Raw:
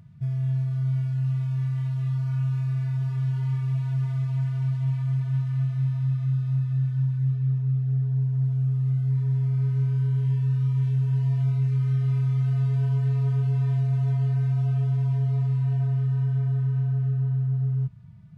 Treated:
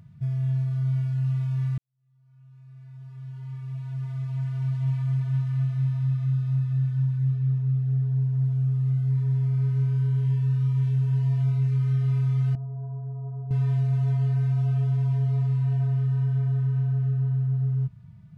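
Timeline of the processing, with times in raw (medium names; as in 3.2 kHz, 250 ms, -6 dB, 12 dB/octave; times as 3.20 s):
1.78–4.90 s: fade in quadratic
12.55–13.51 s: four-pole ladder low-pass 890 Hz, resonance 60%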